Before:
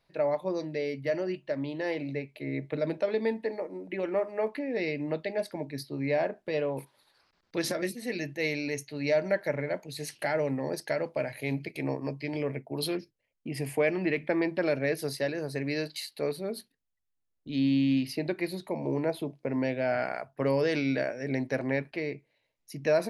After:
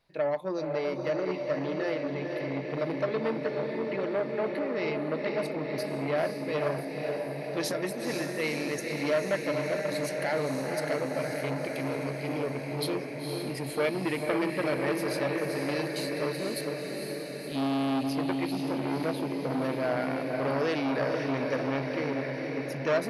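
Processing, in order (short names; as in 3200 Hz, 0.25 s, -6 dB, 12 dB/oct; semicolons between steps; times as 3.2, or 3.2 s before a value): 16.56–17.52 tilt +2 dB/oct; diffused feedback echo 0.503 s, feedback 69%, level -4 dB; core saturation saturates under 1100 Hz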